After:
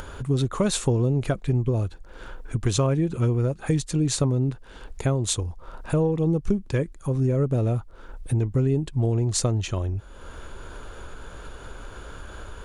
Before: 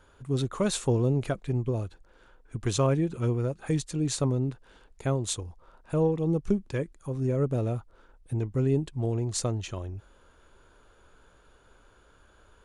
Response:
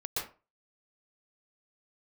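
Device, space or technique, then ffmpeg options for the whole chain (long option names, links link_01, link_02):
upward and downward compression: -af "lowshelf=frequency=140:gain=5,acompressor=mode=upward:threshold=-33dB:ratio=2.5,acompressor=threshold=-25dB:ratio=4,volume=6.5dB"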